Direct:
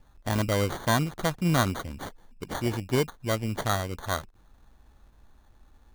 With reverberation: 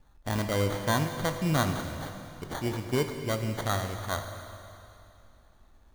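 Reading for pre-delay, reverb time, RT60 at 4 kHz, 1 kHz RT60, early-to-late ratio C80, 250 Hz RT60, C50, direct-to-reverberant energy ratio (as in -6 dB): 20 ms, 2.8 s, 2.8 s, 2.8 s, 7.5 dB, 2.8 s, 7.0 dB, 5.5 dB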